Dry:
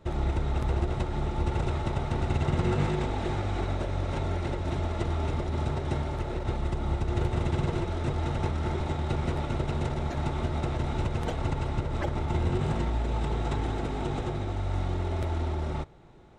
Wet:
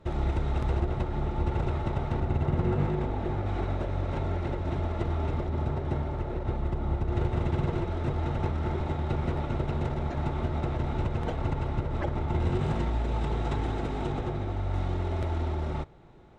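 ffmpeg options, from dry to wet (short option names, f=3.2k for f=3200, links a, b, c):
-af "asetnsamples=n=441:p=0,asendcmd='0.8 lowpass f 2200;2.2 lowpass f 1100;3.46 lowpass f 2100;5.47 lowpass f 1400;7.12 lowpass f 2300;12.4 lowpass f 5000;14.12 lowpass f 2600;14.74 lowpass f 4400',lowpass=f=4.8k:p=1"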